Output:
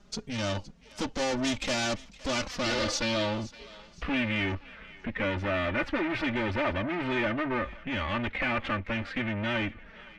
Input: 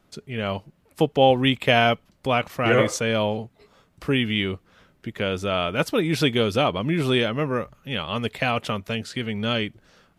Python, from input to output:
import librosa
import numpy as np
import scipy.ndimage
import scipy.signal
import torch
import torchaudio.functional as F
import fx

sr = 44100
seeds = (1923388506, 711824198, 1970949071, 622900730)

y = fx.low_shelf(x, sr, hz=84.0, db=12.0)
y = fx.tube_stage(y, sr, drive_db=32.0, bias=0.65)
y = fx.env_flanger(y, sr, rest_ms=5.0, full_db=-14.5)
y = fx.filter_sweep_lowpass(y, sr, from_hz=6100.0, to_hz=2100.0, start_s=2.31, end_s=4.58, q=2.3)
y = fx.echo_thinned(y, sr, ms=516, feedback_pct=41, hz=930.0, wet_db=-18)
y = F.gain(torch.from_numpy(y), 7.5).numpy()